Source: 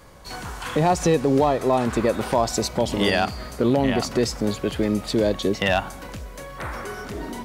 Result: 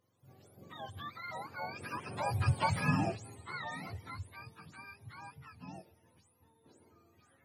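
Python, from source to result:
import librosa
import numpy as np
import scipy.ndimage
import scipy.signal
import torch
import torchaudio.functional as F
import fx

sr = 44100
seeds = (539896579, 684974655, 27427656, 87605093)

y = fx.octave_mirror(x, sr, pivot_hz=730.0)
y = fx.doppler_pass(y, sr, speed_mps=21, closest_m=5.1, pass_at_s=2.64)
y = y * librosa.db_to_amplitude(-6.5)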